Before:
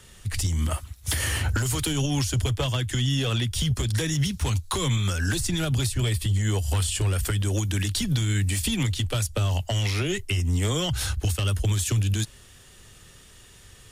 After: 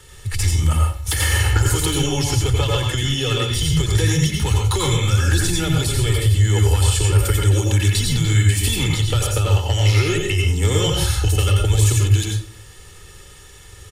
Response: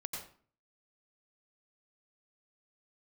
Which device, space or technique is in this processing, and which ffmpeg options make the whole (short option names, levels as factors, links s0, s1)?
microphone above a desk: -filter_complex "[0:a]aecho=1:1:2.3:0.63[s0];[1:a]atrim=start_sample=2205[s1];[s0][s1]afir=irnorm=-1:irlink=0,volume=2"